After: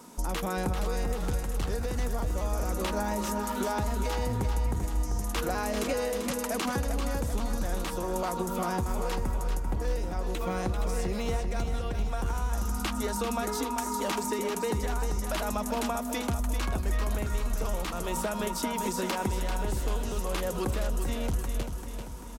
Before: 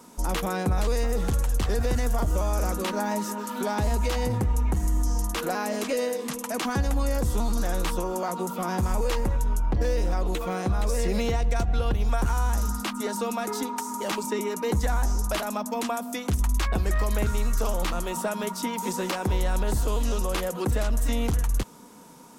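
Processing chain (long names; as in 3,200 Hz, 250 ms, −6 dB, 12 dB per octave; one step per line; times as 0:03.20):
downward compressor, threshold −27 dBFS, peak gain reduction 7.5 dB
on a send: repeating echo 391 ms, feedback 54%, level −7.5 dB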